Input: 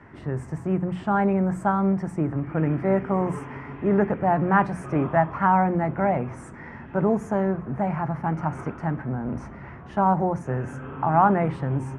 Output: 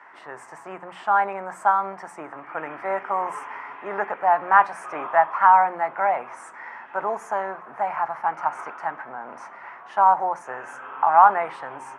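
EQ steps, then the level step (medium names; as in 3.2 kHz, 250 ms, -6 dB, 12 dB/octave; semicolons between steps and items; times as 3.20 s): resonant high-pass 910 Hz, resonance Q 1.6; +2.5 dB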